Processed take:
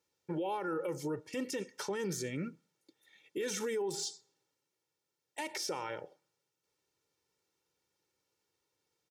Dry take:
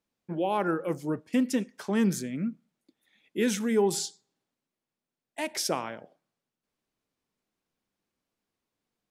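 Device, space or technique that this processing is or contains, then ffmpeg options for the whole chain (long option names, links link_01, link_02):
broadcast voice chain: -af "highpass=89,aecho=1:1:2.2:0.77,deesser=0.7,acompressor=threshold=-27dB:ratio=3,equalizer=frequency=5900:width_type=o:width=0.75:gain=6,alimiter=level_in=4.5dB:limit=-24dB:level=0:latency=1:release=47,volume=-4.5dB"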